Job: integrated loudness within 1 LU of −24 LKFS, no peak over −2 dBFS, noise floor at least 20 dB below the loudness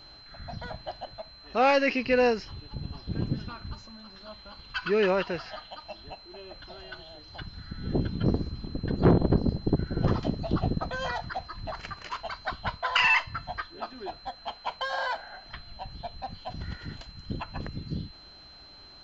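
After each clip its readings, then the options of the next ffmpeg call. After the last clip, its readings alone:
interfering tone 4,100 Hz; level of the tone −49 dBFS; integrated loudness −29.0 LKFS; sample peak −11.5 dBFS; target loudness −24.0 LKFS
→ -af "bandreject=frequency=4100:width=30"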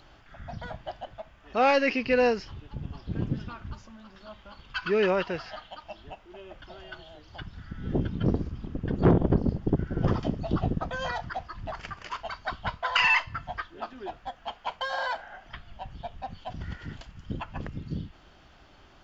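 interfering tone none found; integrated loudness −29.0 LKFS; sample peak −11.5 dBFS; target loudness −24.0 LKFS
→ -af "volume=5dB"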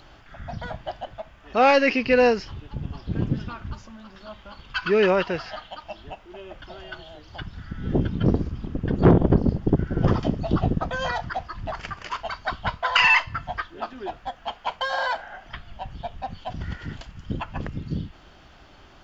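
integrated loudness −24.0 LKFS; sample peak −6.5 dBFS; background noise floor −50 dBFS

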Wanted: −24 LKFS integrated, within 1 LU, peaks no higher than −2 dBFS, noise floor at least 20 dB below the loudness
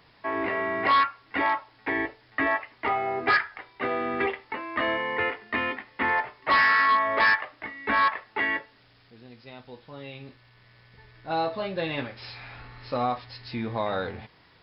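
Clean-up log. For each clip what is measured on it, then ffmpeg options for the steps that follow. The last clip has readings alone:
integrated loudness −26.0 LKFS; sample peak −14.0 dBFS; target loudness −24.0 LKFS
→ -af "volume=2dB"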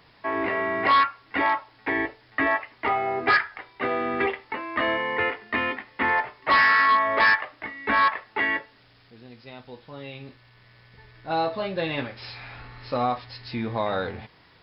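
integrated loudness −24.0 LKFS; sample peak −12.0 dBFS; background noise floor −57 dBFS

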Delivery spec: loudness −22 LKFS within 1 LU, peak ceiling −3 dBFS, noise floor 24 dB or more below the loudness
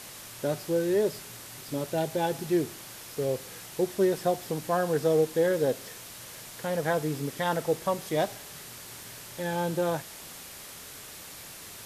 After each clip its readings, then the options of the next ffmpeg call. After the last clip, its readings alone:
background noise floor −45 dBFS; target noise floor −53 dBFS; integrated loudness −29.0 LKFS; sample peak −13.5 dBFS; target loudness −22.0 LKFS
→ -af "afftdn=noise_reduction=8:noise_floor=-45"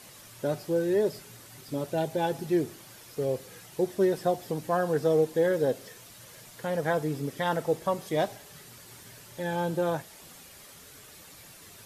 background noise floor −50 dBFS; target noise floor −53 dBFS
→ -af "afftdn=noise_reduction=6:noise_floor=-50"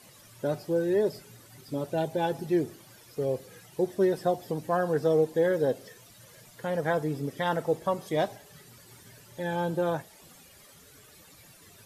background noise floor −54 dBFS; integrated loudness −29.0 LKFS; sample peak −13.5 dBFS; target loudness −22.0 LKFS
→ -af "volume=7dB"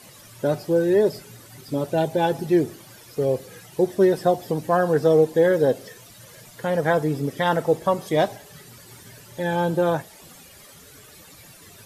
integrated loudness −22.0 LKFS; sample peak −6.5 dBFS; background noise floor −47 dBFS

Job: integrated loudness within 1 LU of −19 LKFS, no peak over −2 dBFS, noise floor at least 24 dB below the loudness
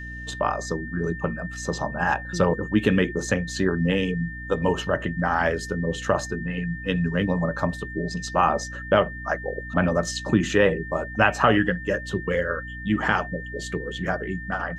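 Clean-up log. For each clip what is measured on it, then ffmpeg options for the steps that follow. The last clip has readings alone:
mains hum 60 Hz; hum harmonics up to 300 Hz; level of the hum −36 dBFS; interfering tone 1,800 Hz; level of the tone −36 dBFS; integrated loudness −24.5 LKFS; sample peak −4.0 dBFS; target loudness −19.0 LKFS
→ -af "bandreject=frequency=60:width_type=h:width=4,bandreject=frequency=120:width_type=h:width=4,bandreject=frequency=180:width_type=h:width=4,bandreject=frequency=240:width_type=h:width=4,bandreject=frequency=300:width_type=h:width=4"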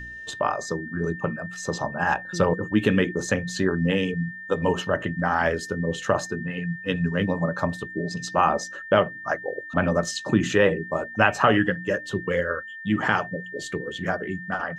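mains hum none found; interfering tone 1,800 Hz; level of the tone −36 dBFS
→ -af "bandreject=frequency=1800:width=30"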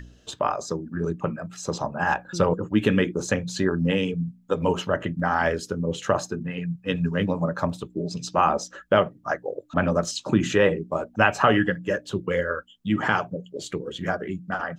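interfering tone none found; integrated loudness −25.5 LKFS; sample peak −4.0 dBFS; target loudness −19.0 LKFS
→ -af "volume=6.5dB,alimiter=limit=-2dB:level=0:latency=1"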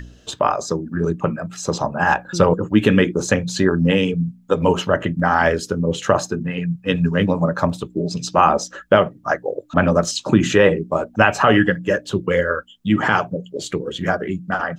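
integrated loudness −19.0 LKFS; sample peak −2.0 dBFS; background noise floor −48 dBFS

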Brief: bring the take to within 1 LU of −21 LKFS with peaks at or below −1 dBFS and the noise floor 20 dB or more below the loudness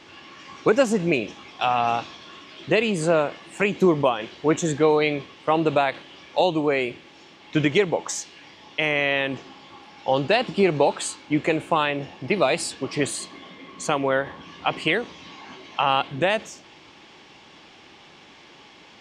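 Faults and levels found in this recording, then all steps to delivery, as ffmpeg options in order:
integrated loudness −23.0 LKFS; sample peak −6.5 dBFS; target loudness −21.0 LKFS
→ -af "volume=2dB"

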